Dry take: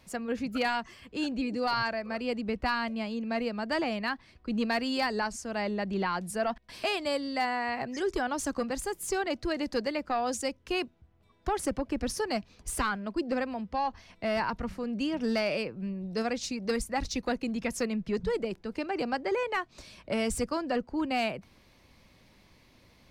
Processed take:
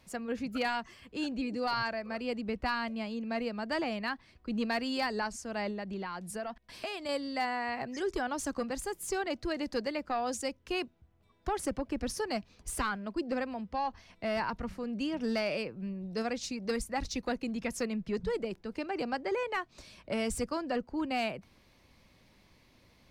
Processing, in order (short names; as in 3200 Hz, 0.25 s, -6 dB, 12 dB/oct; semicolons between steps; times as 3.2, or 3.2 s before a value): 5.7–7.09 compressor, threshold -32 dBFS, peak gain reduction 7 dB; gain -3 dB